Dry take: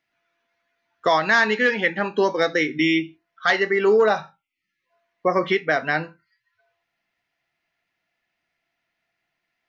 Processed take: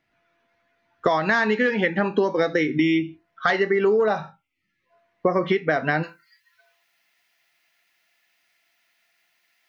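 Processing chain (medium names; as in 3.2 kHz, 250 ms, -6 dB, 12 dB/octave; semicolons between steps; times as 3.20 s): tilt EQ -2 dB/octave, from 6.02 s +3.5 dB/octave; compression 6:1, threshold -23 dBFS, peak gain reduction 11.5 dB; trim +5.5 dB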